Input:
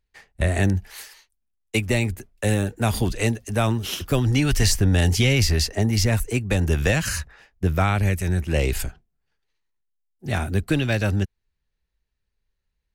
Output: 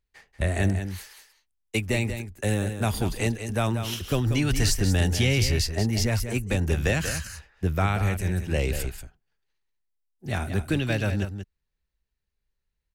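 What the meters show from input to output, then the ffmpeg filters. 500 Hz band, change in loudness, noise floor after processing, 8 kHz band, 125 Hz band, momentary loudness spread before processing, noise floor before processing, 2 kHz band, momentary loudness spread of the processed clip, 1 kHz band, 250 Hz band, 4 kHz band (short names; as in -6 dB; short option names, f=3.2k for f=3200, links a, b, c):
-3.5 dB, -3.5 dB, -81 dBFS, -3.5 dB, -3.5 dB, 9 LU, -78 dBFS, -3.5 dB, 10 LU, -3.5 dB, -3.5 dB, -3.5 dB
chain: -af "aecho=1:1:186:0.355,volume=-4dB"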